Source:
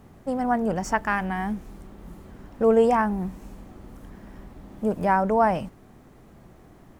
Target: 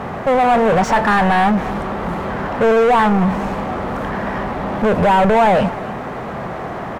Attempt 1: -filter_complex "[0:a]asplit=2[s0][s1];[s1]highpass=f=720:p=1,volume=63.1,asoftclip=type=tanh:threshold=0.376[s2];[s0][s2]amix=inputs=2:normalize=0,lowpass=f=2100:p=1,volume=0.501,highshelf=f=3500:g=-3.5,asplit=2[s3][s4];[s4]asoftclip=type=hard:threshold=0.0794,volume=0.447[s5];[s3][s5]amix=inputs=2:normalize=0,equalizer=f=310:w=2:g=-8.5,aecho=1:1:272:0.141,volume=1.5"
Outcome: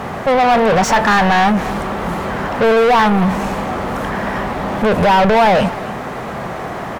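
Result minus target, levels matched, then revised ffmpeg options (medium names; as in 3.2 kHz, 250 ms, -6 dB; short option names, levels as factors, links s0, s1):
8 kHz band +6.5 dB; hard clipper: distortion -4 dB
-filter_complex "[0:a]asplit=2[s0][s1];[s1]highpass=f=720:p=1,volume=63.1,asoftclip=type=tanh:threshold=0.376[s2];[s0][s2]amix=inputs=2:normalize=0,lowpass=f=2100:p=1,volume=0.501,highshelf=f=3500:g=-14.5,asplit=2[s3][s4];[s4]asoftclip=type=hard:threshold=0.0335,volume=0.447[s5];[s3][s5]amix=inputs=2:normalize=0,equalizer=f=310:w=2:g=-8.5,aecho=1:1:272:0.141,volume=1.5"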